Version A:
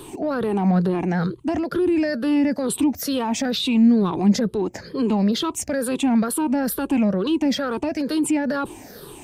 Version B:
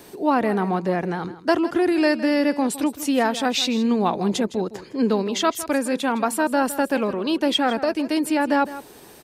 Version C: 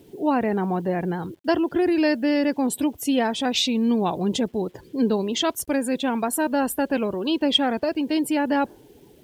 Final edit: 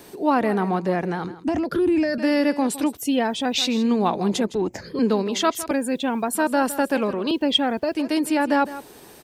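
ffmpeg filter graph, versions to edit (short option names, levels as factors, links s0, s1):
-filter_complex "[0:a]asplit=2[s0][s1];[2:a]asplit=3[s2][s3][s4];[1:a]asplit=6[s5][s6][s7][s8][s9][s10];[s5]atrim=end=1.442[s11];[s0]atrim=start=1.438:end=2.182[s12];[s6]atrim=start=2.178:end=2.972[s13];[s2]atrim=start=2.968:end=3.582[s14];[s7]atrim=start=3.578:end=4.552[s15];[s1]atrim=start=4.548:end=4.992[s16];[s8]atrim=start=4.988:end=5.712[s17];[s3]atrim=start=5.708:end=6.352[s18];[s9]atrim=start=6.348:end=7.312[s19];[s4]atrim=start=7.308:end=7.952[s20];[s10]atrim=start=7.948[s21];[s11][s12]acrossfade=d=0.004:c1=hsin:c2=hsin[s22];[s22][s13]acrossfade=d=0.004:c1=hsin:c2=hsin[s23];[s23][s14]acrossfade=d=0.004:c1=hsin:c2=hsin[s24];[s24][s15]acrossfade=d=0.004:c1=hsin:c2=hsin[s25];[s25][s16]acrossfade=d=0.004:c1=hsin:c2=hsin[s26];[s26][s17]acrossfade=d=0.004:c1=hsin:c2=hsin[s27];[s27][s18]acrossfade=d=0.004:c1=hsin:c2=hsin[s28];[s28][s19]acrossfade=d=0.004:c1=hsin:c2=hsin[s29];[s29][s20]acrossfade=d=0.004:c1=hsin:c2=hsin[s30];[s30][s21]acrossfade=d=0.004:c1=hsin:c2=hsin"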